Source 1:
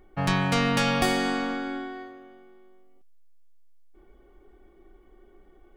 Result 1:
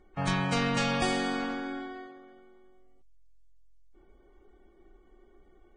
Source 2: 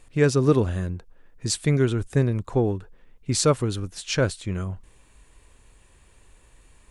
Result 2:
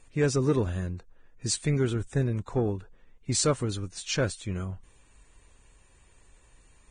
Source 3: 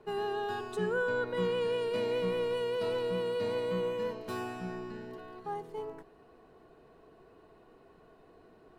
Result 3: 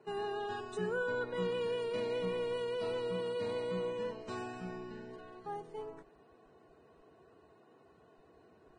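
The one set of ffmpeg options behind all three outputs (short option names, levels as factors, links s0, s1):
-af "asoftclip=type=tanh:threshold=0.282,volume=0.631" -ar 22050 -c:a libvorbis -b:a 16k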